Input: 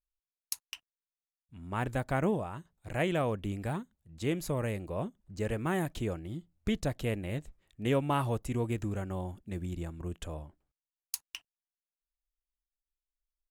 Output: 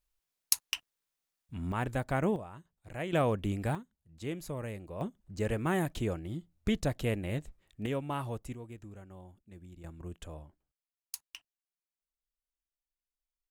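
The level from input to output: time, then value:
+9 dB
from 0:01.72 −0.5 dB
from 0:02.36 −7 dB
from 0:03.13 +2.5 dB
from 0:03.75 −6 dB
from 0:05.01 +1 dB
from 0:07.86 −6 dB
from 0:08.54 −14 dB
from 0:09.84 −5 dB

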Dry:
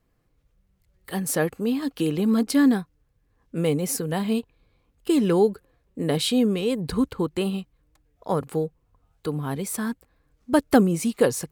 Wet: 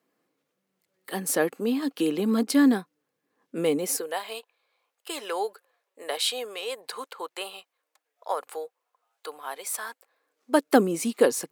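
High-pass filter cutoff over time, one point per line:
high-pass filter 24 dB per octave
0:03.78 230 Hz
0:04.21 590 Hz
0:09.90 590 Hz
0:10.85 240 Hz

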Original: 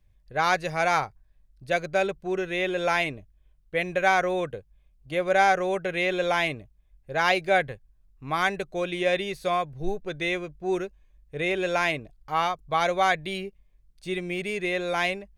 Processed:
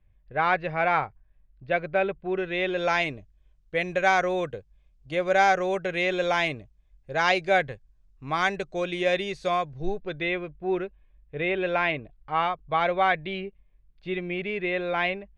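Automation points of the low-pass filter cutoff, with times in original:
low-pass filter 24 dB per octave
0:02.18 3,000 Hz
0:03.15 7,700 Hz
0:09.56 7,700 Hz
0:10.32 3,300 Hz

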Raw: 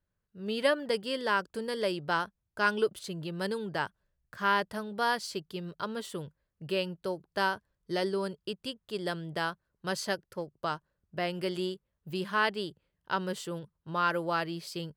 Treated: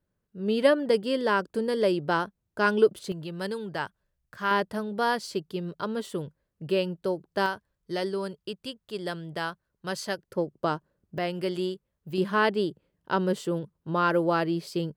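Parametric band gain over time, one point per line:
parametric band 300 Hz 2.7 octaves
+9 dB
from 0:03.12 +1 dB
from 0:04.51 +7 dB
from 0:07.46 +1 dB
from 0:10.28 +11.5 dB
from 0:11.18 +4 dB
from 0:12.18 +10.5 dB

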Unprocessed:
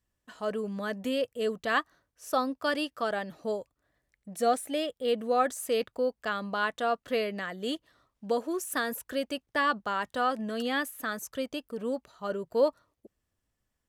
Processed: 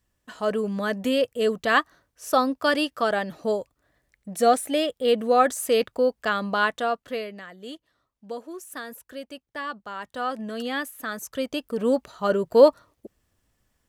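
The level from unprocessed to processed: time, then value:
0:06.63 +7 dB
0:07.45 −6 dB
0:09.83 −6 dB
0:10.39 +1 dB
0:11.03 +1 dB
0:11.93 +10.5 dB

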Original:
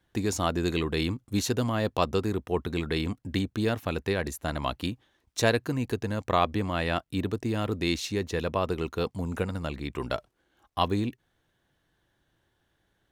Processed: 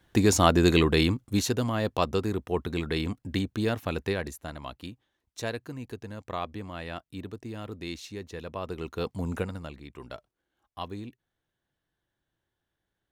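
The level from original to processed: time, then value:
0:00.82 +7 dB
0:01.58 −0.5 dB
0:04.08 −0.5 dB
0:04.60 −9.5 dB
0:08.46 −9.5 dB
0:09.30 +1 dB
0:09.84 −11 dB

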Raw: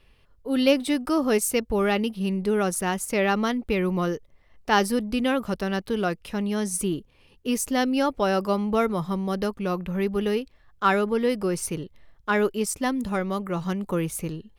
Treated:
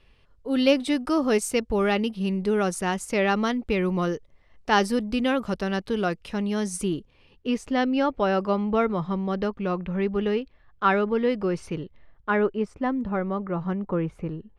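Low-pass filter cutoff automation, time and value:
0:06.96 7,700 Hz
0:07.58 3,300 Hz
0:11.81 3,300 Hz
0:12.72 1,600 Hz

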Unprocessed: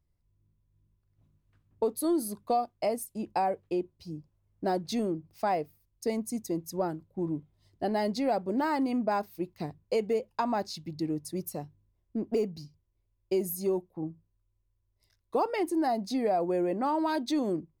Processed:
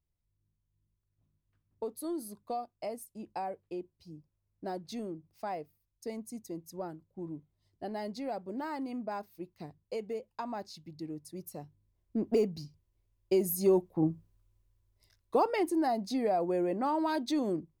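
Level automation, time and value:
0:11.36 −9 dB
0:12.24 +1 dB
0:13.44 +1 dB
0:14.09 +8 dB
0:15.92 −2 dB

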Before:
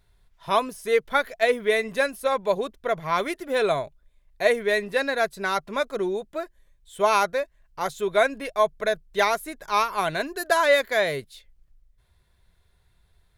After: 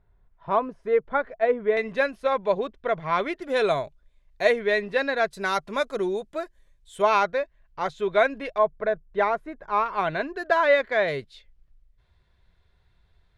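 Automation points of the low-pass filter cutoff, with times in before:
1,300 Hz
from 0:01.77 3,300 Hz
from 0:03.42 7,000 Hz
from 0:04.51 4,100 Hz
from 0:05.33 9,600 Hz
from 0:07.02 3,600 Hz
from 0:08.58 1,500 Hz
from 0:09.86 2,600 Hz
from 0:11.08 4,400 Hz

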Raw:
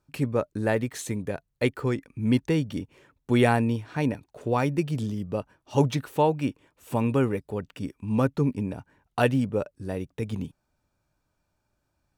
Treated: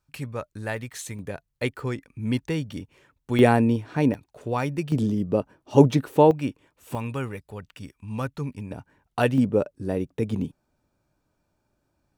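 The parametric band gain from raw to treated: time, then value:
parametric band 320 Hz 2.4 octaves
−10.5 dB
from 0:01.19 −4 dB
from 0:03.39 +5.5 dB
from 0:04.14 −3 dB
from 0:04.92 +8.5 dB
from 0:06.31 −0.5 dB
from 0:06.95 −10 dB
from 0:08.71 +0.5 dB
from 0:09.38 +6.5 dB

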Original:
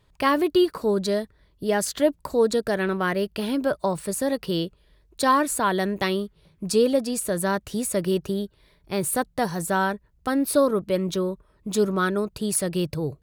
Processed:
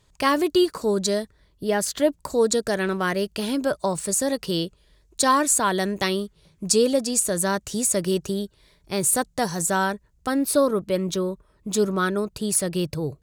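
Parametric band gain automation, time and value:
parametric band 7,000 Hz 0.99 octaves
0:01.21 +12.5 dB
0:01.80 +1 dB
0:02.39 +12.5 dB
0:09.79 +12.5 dB
0:10.58 +5.5 dB

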